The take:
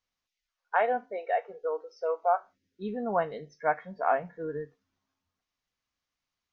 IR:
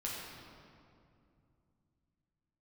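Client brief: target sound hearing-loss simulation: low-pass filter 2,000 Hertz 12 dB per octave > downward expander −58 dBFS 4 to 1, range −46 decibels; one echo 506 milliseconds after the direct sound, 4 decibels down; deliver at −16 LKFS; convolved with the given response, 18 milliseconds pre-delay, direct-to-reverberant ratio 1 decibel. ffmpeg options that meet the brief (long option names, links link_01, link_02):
-filter_complex "[0:a]aecho=1:1:506:0.631,asplit=2[link_01][link_02];[1:a]atrim=start_sample=2205,adelay=18[link_03];[link_02][link_03]afir=irnorm=-1:irlink=0,volume=-3dB[link_04];[link_01][link_04]amix=inputs=2:normalize=0,lowpass=2000,agate=range=-46dB:threshold=-58dB:ratio=4,volume=11.5dB"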